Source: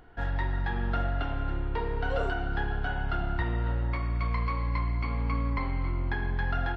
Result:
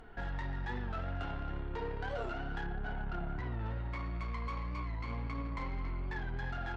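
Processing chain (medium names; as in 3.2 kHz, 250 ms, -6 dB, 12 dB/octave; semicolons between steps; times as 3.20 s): 2.66–3.60 s: low-pass 1.3 kHz 6 dB/octave; peak limiter -28 dBFS, peak gain reduction 10 dB; Chebyshev shaper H 5 -22 dB, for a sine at -27.5 dBFS; flange 0.34 Hz, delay 4.3 ms, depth 8.7 ms, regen +50%; warped record 45 rpm, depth 100 cents; trim +2.5 dB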